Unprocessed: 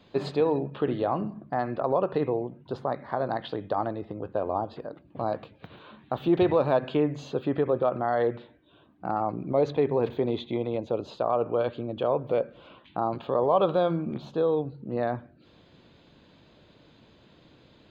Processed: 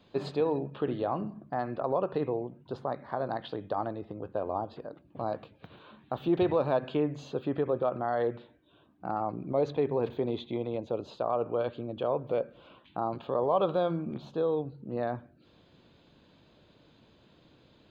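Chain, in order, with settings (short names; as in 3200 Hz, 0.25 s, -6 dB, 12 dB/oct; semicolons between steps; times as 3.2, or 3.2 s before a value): bell 2000 Hz -3 dB 0.29 oct; gain -4 dB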